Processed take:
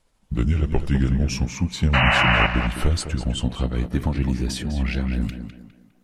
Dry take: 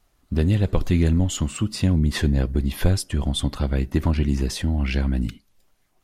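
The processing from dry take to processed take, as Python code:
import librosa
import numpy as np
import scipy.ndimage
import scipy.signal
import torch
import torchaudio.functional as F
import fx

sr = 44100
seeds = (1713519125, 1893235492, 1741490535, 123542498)

y = fx.pitch_glide(x, sr, semitones=-5.0, runs='ending unshifted')
y = fx.spec_paint(y, sr, seeds[0], shape='noise', start_s=1.93, length_s=0.54, low_hz=540.0, high_hz=3000.0, level_db=-19.0)
y = fx.echo_tape(y, sr, ms=204, feedback_pct=41, wet_db=-6.0, lp_hz=2900.0, drive_db=12.0, wow_cents=7)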